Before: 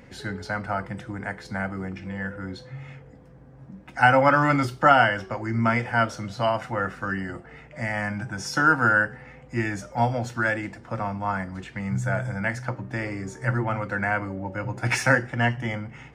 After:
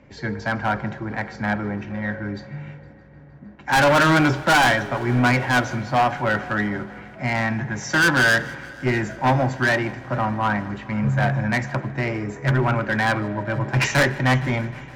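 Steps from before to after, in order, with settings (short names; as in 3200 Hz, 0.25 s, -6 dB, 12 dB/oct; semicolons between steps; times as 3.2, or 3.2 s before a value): self-modulated delay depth 0.21 ms; Chebyshev low-pass 6900 Hz, order 8; high shelf 2900 Hz -8 dB; in parallel at -4.5 dB: soft clip -23.5 dBFS, distortion -8 dB; on the sum: wide varispeed 1.08×; overloaded stage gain 19 dB; on a send: multi-head echo 0.155 s, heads first and third, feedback 74%, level -22 dB; on the sum: spring tank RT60 3.1 s, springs 34 ms, chirp 35 ms, DRR 16 dB; three-band expander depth 40%; gain +4.5 dB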